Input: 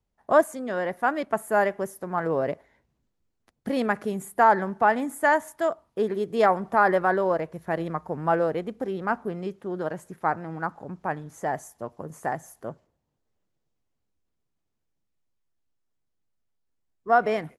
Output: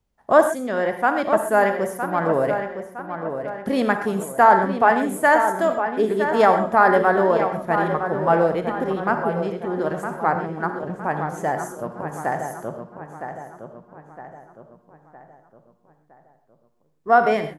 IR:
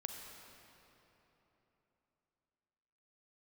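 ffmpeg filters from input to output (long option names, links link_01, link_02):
-filter_complex "[0:a]asplit=2[link_01][link_02];[link_02]adelay=962,lowpass=frequency=3000:poles=1,volume=-8dB,asplit=2[link_03][link_04];[link_04]adelay=962,lowpass=frequency=3000:poles=1,volume=0.47,asplit=2[link_05][link_06];[link_06]adelay=962,lowpass=frequency=3000:poles=1,volume=0.47,asplit=2[link_07][link_08];[link_08]adelay=962,lowpass=frequency=3000:poles=1,volume=0.47,asplit=2[link_09][link_10];[link_10]adelay=962,lowpass=frequency=3000:poles=1,volume=0.47[link_11];[link_01][link_03][link_05][link_07][link_09][link_11]amix=inputs=6:normalize=0[link_12];[1:a]atrim=start_sample=2205,atrim=end_sample=6174[link_13];[link_12][link_13]afir=irnorm=-1:irlink=0,volume=7.5dB"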